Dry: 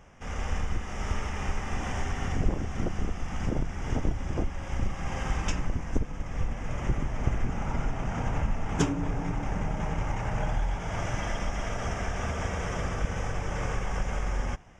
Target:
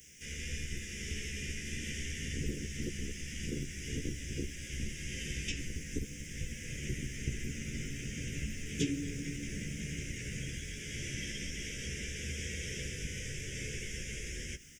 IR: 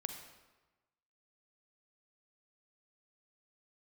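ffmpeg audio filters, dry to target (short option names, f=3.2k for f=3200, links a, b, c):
-filter_complex "[0:a]aemphasis=mode=production:type=riaa,acrossover=split=3400[a][b];[b]acompressor=threshold=-52dB:ratio=4:attack=1:release=60[c];[a][c]amix=inputs=2:normalize=0,highshelf=f=4.8k:g=9,acrossover=split=180|810|2300[d][e][f][g];[d]acontrast=84[h];[f]alimiter=level_in=13.5dB:limit=-24dB:level=0:latency=1,volume=-13.5dB[i];[h][e][i][g]amix=inputs=4:normalize=0,asuperstop=centerf=910:order=8:qfactor=0.65,asplit=2[j][k];[k]adelay=14,volume=-4dB[l];[j][l]amix=inputs=2:normalize=0,asplit=5[m][n][o][p][q];[n]adelay=137,afreqshift=-100,volume=-20.5dB[r];[o]adelay=274,afreqshift=-200,volume=-26dB[s];[p]adelay=411,afreqshift=-300,volume=-31.5dB[t];[q]adelay=548,afreqshift=-400,volume=-37dB[u];[m][r][s][t][u]amix=inputs=5:normalize=0,volume=-3.5dB"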